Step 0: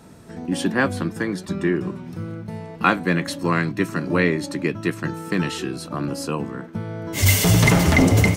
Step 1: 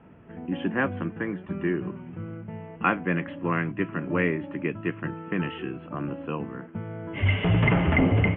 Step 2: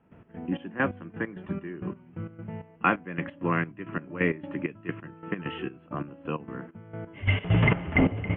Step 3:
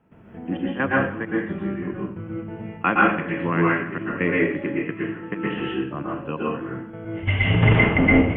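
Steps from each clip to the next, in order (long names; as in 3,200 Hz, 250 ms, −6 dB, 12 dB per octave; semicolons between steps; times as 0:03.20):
Butterworth low-pass 3,100 Hz 96 dB per octave; level −5.5 dB
gate pattern ".x.xx..x." 132 BPM −12 dB
dense smooth reverb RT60 0.54 s, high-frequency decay 0.95×, pre-delay 105 ms, DRR −4.5 dB; level +1.5 dB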